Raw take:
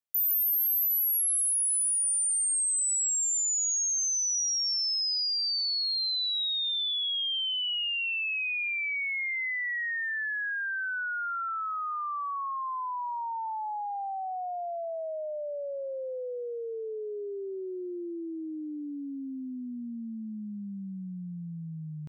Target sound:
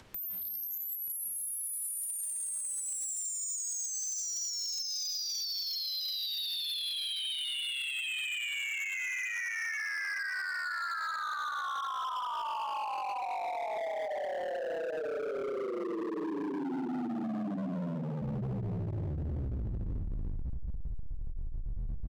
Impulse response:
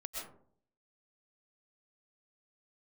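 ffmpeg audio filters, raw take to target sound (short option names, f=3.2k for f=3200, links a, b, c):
-filter_complex "[0:a]lowpass=f=3.5k:p=1,aemphasis=mode=reproduction:type=50fm[a];[1:a]atrim=start_sample=2205,afade=t=out:st=0.34:d=0.01,atrim=end_sample=15435,asetrate=28224,aresample=44100[b];[a][b]afir=irnorm=-1:irlink=0,acompressor=threshold=-36dB:ratio=6,afreqshift=-200,lowshelf=f=340:g=11,aecho=1:1:932:0.631,acompressor=mode=upward:threshold=-25dB:ratio=2.5,asoftclip=type=hard:threshold=-33dB,asettb=1/sr,asplit=3[c][d][e];[c]atrim=end=15.624[f];[d]atrim=start=15.62:end=18.22,asetpts=PTS-STARTPTS,afade=t=in:d=0.004:c=qsin,afade=t=out:st=2.596:d=0.004:c=qsin,highpass=f=140:w=0.5412,highpass=f=140:w=1.3066[g];[e]atrim=start=18.216[h];[f][g]acrossfade=d=0.004:c1=hsin:c2=qsin[i];[i][h]acrossfade=d=0.004:c1=qsin:c2=hsin"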